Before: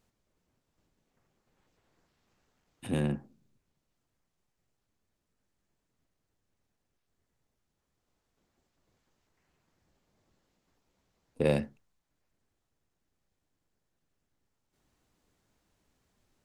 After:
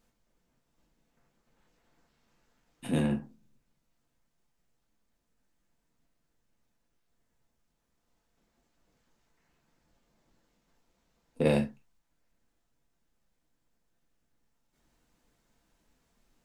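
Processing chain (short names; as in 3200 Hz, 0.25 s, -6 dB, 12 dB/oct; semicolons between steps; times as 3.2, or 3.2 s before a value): non-linear reverb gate 90 ms falling, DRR 1.5 dB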